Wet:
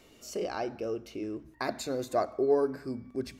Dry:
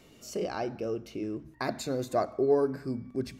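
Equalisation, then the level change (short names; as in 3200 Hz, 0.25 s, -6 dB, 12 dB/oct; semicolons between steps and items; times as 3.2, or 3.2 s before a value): bell 150 Hz -7.5 dB 1.1 oct; 0.0 dB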